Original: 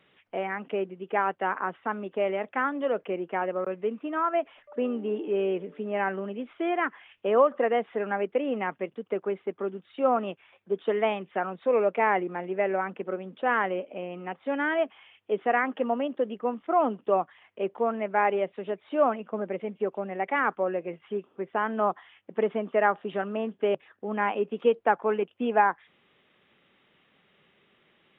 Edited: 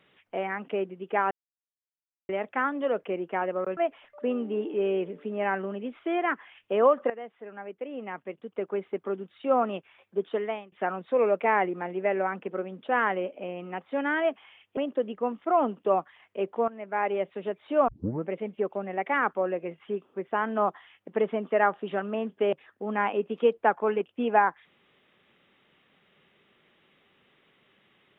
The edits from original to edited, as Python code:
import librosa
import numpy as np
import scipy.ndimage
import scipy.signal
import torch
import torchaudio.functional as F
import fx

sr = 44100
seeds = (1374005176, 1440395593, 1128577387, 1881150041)

y = fx.edit(x, sr, fx.silence(start_s=1.31, length_s=0.98),
    fx.cut(start_s=3.77, length_s=0.54),
    fx.fade_in_from(start_s=7.64, length_s=1.77, curve='qua', floor_db=-14.5),
    fx.fade_out_to(start_s=10.76, length_s=0.5, floor_db=-23.0),
    fx.cut(start_s=15.31, length_s=0.68),
    fx.fade_in_from(start_s=17.9, length_s=0.6, floor_db=-14.5),
    fx.tape_start(start_s=19.1, length_s=0.4), tone=tone)